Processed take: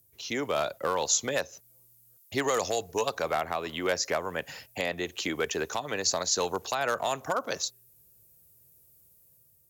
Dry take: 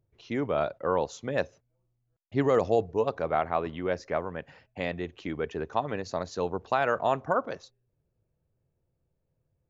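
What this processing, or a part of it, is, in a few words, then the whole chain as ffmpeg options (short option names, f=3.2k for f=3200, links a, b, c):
FM broadcast chain: -filter_complex "[0:a]highpass=44,dynaudnorm=f=290:g=5:m=4.5dB,acrossover=split=290|680|1700[a][b][c][d];[a]acompressor=threshold=-43dB:ratio=4[e];[b]acompressor=threshold=-31dB:ratio=4[f];[c]acompressor=threshold=-28dB:ratio=4[g];[d]acompressor=threshold=-41dB:ratio=4[h];[e][f][g][h]amix=inputs=4:normalize=0,aemphasis=mode=production:type=75fm,alimiter=limit=-19dB:level=0:latency=1:release=303,asoftclip=type=hard:threshold=-21.5dB,lowpass=f=15k:w=0.5412,lowpass=f=15k:w=1.3066,aemphasis=mode=production:type=75fm,volume=2dB"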